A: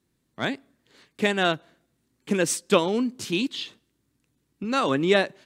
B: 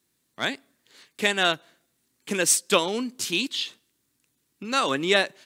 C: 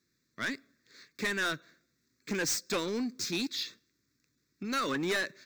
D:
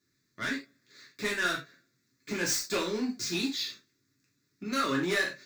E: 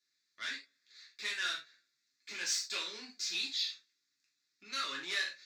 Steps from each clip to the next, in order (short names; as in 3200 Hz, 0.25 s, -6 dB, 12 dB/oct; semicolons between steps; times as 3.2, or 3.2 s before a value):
tilt +2.5 dB/oct
median filter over 3 samples; fixed phaser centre 3000 Hz, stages 6; soft clip -26.5 dBFS, distortion -8 dB
non-linear reverb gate 0.12 s falling, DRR -3.5 dB; gain -3 dB
band-pass 3800 Hz, Q 1.1